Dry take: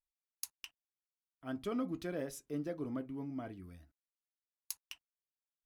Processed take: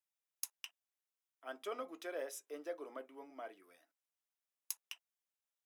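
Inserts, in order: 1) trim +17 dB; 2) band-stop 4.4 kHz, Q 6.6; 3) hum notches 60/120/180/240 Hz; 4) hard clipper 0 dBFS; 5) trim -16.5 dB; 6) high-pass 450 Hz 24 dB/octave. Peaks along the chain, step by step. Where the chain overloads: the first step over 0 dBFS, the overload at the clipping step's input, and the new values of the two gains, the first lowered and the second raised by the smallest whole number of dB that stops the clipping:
-2.0 dBFS, -2.0 dBFS, -2.0 dBFS, -2.0 dBFS, -18.5 dBFS, -18.5 dBFS; nothing clips

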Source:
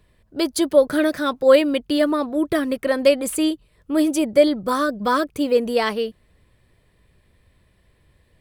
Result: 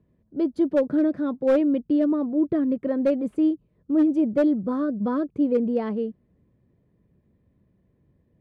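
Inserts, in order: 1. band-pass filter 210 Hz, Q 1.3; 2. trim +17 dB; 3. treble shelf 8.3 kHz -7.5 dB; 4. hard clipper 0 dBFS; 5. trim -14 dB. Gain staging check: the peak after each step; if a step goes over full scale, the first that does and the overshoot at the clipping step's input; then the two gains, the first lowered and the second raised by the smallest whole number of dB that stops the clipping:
-12.0 dBFS, +5.0 dBFS, +5.0 dBFS, 0.0 dBFS, -14.0 dBFS; step 2, 5.0 dB; step 2 +12 dB, step 5 -9 dB

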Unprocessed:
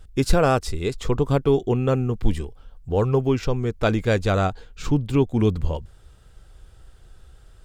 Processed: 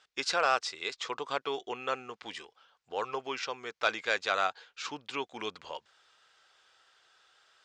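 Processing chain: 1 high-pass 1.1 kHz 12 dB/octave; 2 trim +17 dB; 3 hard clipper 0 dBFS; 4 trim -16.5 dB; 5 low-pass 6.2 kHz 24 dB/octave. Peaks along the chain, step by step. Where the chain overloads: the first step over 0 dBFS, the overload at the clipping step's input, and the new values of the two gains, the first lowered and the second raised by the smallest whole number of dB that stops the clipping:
-10.5 dBFS, +6.5 dBFS, 0.0 dBFS, -16.5 dBFS, -15.5 dBFS; step 2, 6.5 dB; step 2 +10 dB, step 4 -9.5 dB

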